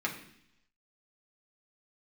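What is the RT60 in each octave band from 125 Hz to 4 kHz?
0.90 s, 0.85 s, 0.70 s, 0.70 s, 0.85 s, 0.95 s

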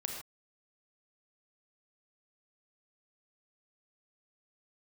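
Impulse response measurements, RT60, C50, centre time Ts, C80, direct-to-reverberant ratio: no single decay rate, 3.5 dB, 36 ms, 5.5 dB, 1.5 dB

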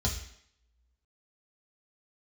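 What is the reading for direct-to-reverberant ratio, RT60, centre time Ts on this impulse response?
-1.5 dB, 0.70 s, 22 ms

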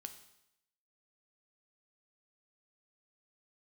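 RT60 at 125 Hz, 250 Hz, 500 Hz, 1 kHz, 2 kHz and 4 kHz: 0.80 s, 0.80 s, 0.80 s, 0.80 s, 0.80 s, 0.80 s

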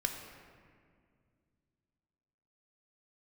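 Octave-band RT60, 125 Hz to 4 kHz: 3.2 s, 3.0 s, 2.3 s, 1.9 s, 1.8 s, 1.2 s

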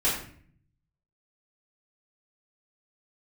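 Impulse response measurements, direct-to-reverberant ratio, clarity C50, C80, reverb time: -9.0 dB, 4.0 dB, 7.5 dB, 0.55 s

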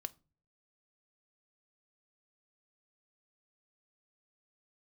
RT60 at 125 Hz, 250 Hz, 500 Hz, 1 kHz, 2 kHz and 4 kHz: 0.70 s, 0.55 s, 0.40 s, 0.30 s, 0.25 s, 0.25 s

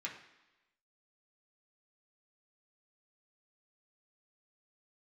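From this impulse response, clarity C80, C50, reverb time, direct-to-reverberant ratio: 10.5 dB, 7.5 dB, 1.0 s, -3.5 dB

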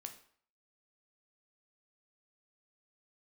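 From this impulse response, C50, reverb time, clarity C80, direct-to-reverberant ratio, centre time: 10.5 dB, 0.55 s, 14.5 dB, 5.5 dB, 11 ms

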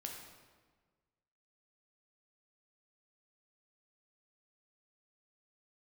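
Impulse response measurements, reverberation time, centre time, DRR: 1.5 s, 52 ms, 0.5 dB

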